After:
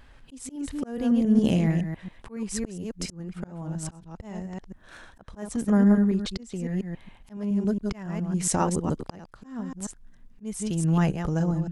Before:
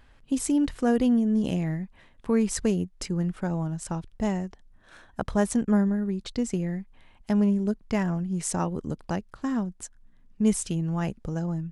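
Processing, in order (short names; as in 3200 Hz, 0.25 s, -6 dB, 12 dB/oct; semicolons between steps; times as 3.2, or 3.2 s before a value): reverse delay 0.139 s, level -7 dB; vibrato 4.3 Hz 28 cents; auto swell 0.572 s; gain +4 dB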